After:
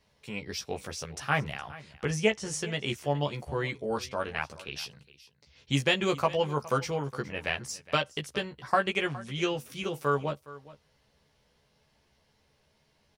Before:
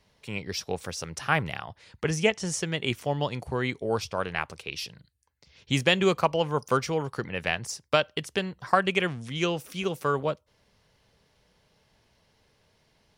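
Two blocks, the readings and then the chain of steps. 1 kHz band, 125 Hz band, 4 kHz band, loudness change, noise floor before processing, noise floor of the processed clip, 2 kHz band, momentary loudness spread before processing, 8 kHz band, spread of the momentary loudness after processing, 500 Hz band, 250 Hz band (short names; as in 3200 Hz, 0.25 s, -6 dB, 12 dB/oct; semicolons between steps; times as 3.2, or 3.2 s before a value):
-2.5 dB, -2.0 dB, -2.5 dB, -3.0 dB, -68 dBFS, -70 dBFS, -2.5 dB, 11 LU, -3.0 dB, 11 LU, -3.0 dB, -3.0 dB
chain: doubler 14 ms -3.5 dB; on a send: echo 0.414 s -18.5 dB; on the sum: gain -4.5 dB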